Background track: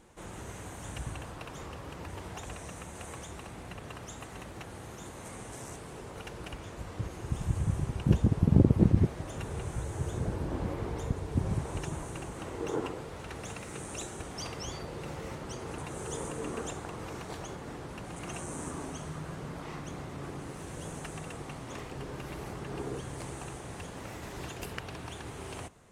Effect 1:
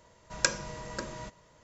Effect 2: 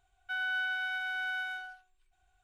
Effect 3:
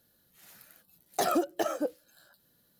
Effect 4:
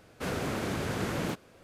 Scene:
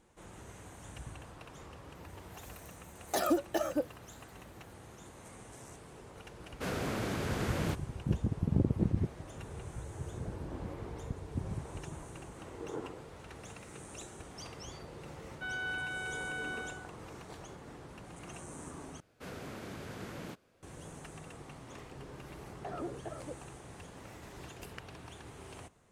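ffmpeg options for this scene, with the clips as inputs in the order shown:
-filter_complex "[3:a]asplit=2[a][b];[4:a]asplit=2[c][d];[0:a]volume=-7.5dB[e];[a]aecho=1:1:3.4:0.44[f];[b]lowpass=1.6k[g];[e]asplit=2[h][i];[h]atrim=end=19.004[j];[d]atrim=end=1.63,asetpts=PTS-STARTPTS,volume=-12dB[k];[i]atrim=start=20.626[l];[f]atrim=end=2.79,asetpts=PTS-STARTPTS,volume=-3.5dB,afade=t=in:d=0.004:c=hsin,afade=t=out:st=2.786:d=0.004:c=hsin,adelay=1950[m];[c]atrim=end=1.63,asetpts=PTS-STARTPTS,volume=-3dB,afade=t=in:d=0.004:c=hsin,afade=t=out:st=1.626:d=0.004:c=hsin,adelay=6400[n];[2:a]atrim=end=2.43,asetpts=PTS-STARTPTS,volume=-5dB,afade=t=in:d=0.004:c=hsin,afade=t=out:st=2.426:d=0.004:c=hsin,adelay=15120[o];[g]atrim=end=2.79,asetpts=PTS-STARTPTS,volume=-14dB,afade=t=in:d=0.004:c=hsin,afade=t=out:st=2.786:d=0.004:c=hsin,adelay=21460[p];[j][k]acrossfade=d=0.004:c1=hsin:c2=hsin[q];[q][l]acrossfade=d=0.004:c1=hsin:c2=hsin[r];[r][m][n][o][p]amix=inputs=5:normalize=0"

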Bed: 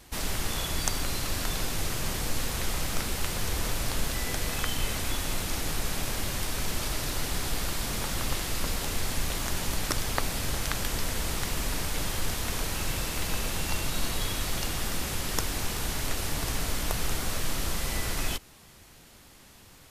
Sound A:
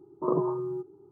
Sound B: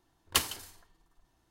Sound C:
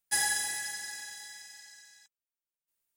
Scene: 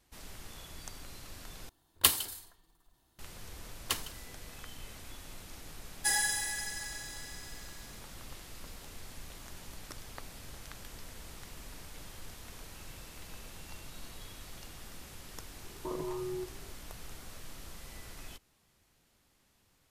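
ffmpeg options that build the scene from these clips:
-filter_complex "[2:a]asplit=2[a][b];[0:a]volume=-17.5dB[c];[a]aexciter=amount=1.2:drive=7.7:freq=3.3k[d];[1:a]acompressor=threshold=-30dB:ratio=6:attack=3.2:release=140:knee=1:detection=peak[e];[c]asplit=2[f][g];[f]atrim=end=1.694[h];[d]atrim=end=1.5,asetpts=PTS-STARTPTS,volume=-1dB[i];[g]atrim=start=3.186[j];[b]atrim=end=1.5,asetpts=PTS-STARTPTS,volume=-6.5dB,afade=t=in:d=0.004:c=hsin,afade=t=out:st=1.496:d=0.004:c=hsin,adelay=3550[k];[3:a]atrim=end=2.96,asetpts=PTS-STARTPTS,volume=-1dB,afade=t=in:d=0.004:c=hsin,afade=t=out:st=2.956:d=0.004:c=hsin,adelay=261513S[l];[e]atrim=end=1.11,asetpts=PTS-STARTPTS,volume=-4dB,afade=t=in:d=0.004:c=hsin,afade=t=out:st=1.106:d=0.004:c=hsin,adelay=15630[m];[h][i]acrossfade=d=0.004:c1=hsin:c2=hsin[n];[n][j]acrossfade=d=0.004:c1=hsin:c2=hsin[o];[o][k][l][m]amix=inputs=4:normalize=0"

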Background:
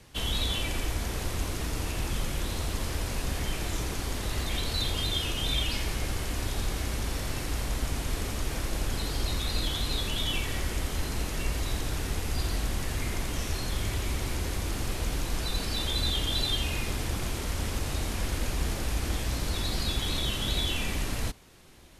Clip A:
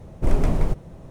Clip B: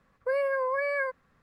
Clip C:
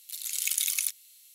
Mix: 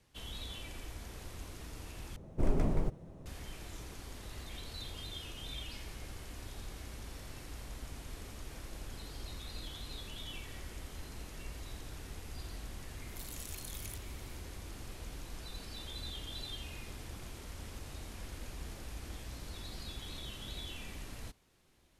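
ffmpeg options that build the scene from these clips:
-filter_complex "[0:a]volume=-15dB[a];[1:a]equalizer=f=300:t=o:w=2:g=4[b];[3:a]acompressor=threshold=-34dB:ratio=6:attack=3.2:release=140:knee=1:detection=peak[c];[a]asplit=2[d][e];[d]atrim=end=2.164[f];[b]atrim=end=1.1,asetpts=PTS-STARTPTS,volume=-11dB[g];[e]atrim=start=3.256[h];[c]atrim=end=1.34,asetpts=PTS-STARTPTS,volume=-9dB,afade=t=in:d=0.004:c=hsin,afade=t=out:st=1.336:d=0.004:c=hsin,adelay=13070[i];[f][g]acrossfade=d=0.004:c1=hsin:c2=hsin[j];[j][h]acrossfade=d=0.004:c1=hsin:c2=hsin[k];[k][i]amix=inputs=2:normalize=0"

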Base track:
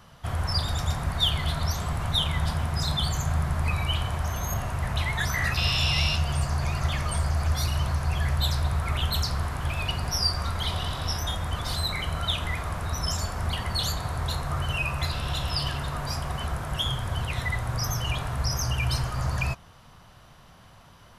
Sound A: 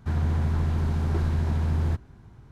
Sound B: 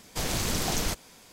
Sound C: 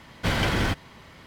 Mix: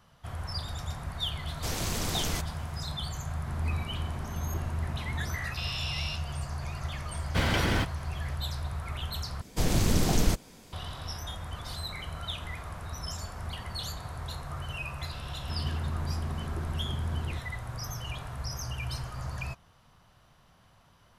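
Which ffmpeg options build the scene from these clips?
-filter_complex "[2:a]asplit=2[a][b];[1:a]asplit=2[c][d];[0:a]volume=-9dB[e];[b]lowshelf=f=460:g=11[f];[e]asplit=2[g][h];[g]atrim=end=9.414[i];[f]atrim=end=1.32,asetpts=PTS-STARTPTS,volume=-3dB[j];[h]atrim=start=10.726[k];[a]atrim=end=1.32,asetpts=PTS-STARTPTS,volume=-4dB,afade=t=in:d=0.004:c=hsin,afade=t=out:st=1.316:d=0.004:c=hsin,adelay=1470[l];[c]atrim=end=2.51,asetpts=PTS-STARTPTS,volume=-10.5dB,afade=t=in:d=0.004:c=hsin,afade=t=out:st=2.506:d=0.004:c=hsin,adelay=3400[m];[3:a]atrim=end=1.26,asetpts=PTS-STARTPTS,volume=-3dB,afade=t=in:d=0.004:c=hsin,afade=t=out:st=1.256:d=0.004:c=hsin,adelay=7110[n];[d]atrim=end=2.51,asetpts=PTS-STARTPTS,volume=-9dB,afade=t=in:d=0.004:c=hsin,afade=t=out:st=2.506:d=0.004:c=hsin,adelay=15420[o];[i][j]acrossfade=d=0.004:c1=hsin:c2=hsin[p];[p][k]acrossfade=d=0.004:c1=hsin:c2=hsin[q];[q][l][m][n][o]amix=inputs=5:normalize=0"

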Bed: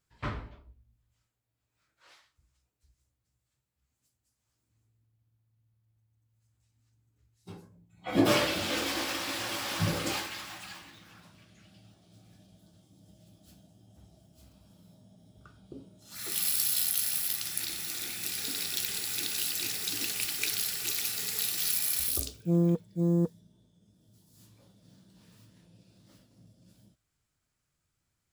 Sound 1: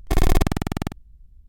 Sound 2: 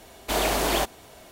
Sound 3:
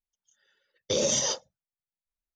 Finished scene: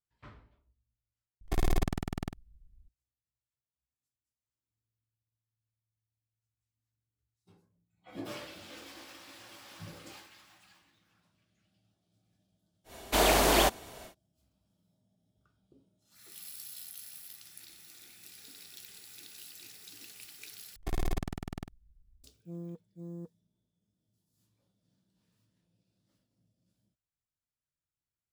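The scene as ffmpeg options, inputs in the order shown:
-filter_complex "[1:a]asplit=2[a][b];[0:a]volume=-17.5dB,asplit=3[c][d][e];[c]atrim=end=1.414[f];[a]atrim=end=1.48,asetpts=PTS-STARTPTS,volume=-10.5dB[g];[d]atrim=start=2.886:end=20.764[h];[b]atrim=end=1.48,asetpts=PTS-STARTPTS,volume=-14.5dB[i];[e]atrim=start=22.236[j];[2:a]atrim=end=1.31,asetpts=PTS-STARTPTS,afade=t=in:d=0.1,afade=t=out:st=1.21:d=0.1,adelay=566244S[k];[f][g]acrossfade=d=0.004:c1=hsin:c2=hsin[l];[l][h]acrossfade=d=0.004:c1=hsin:c2=hsin[m];[m][i]acrossfade=d=0.004:c1=hsin:c2=hsin[n];[n][j]acrossfade=d=0.004:c1=hsin:c2=hsin[o];[o][k]amix=inputs=2:normalize=0"

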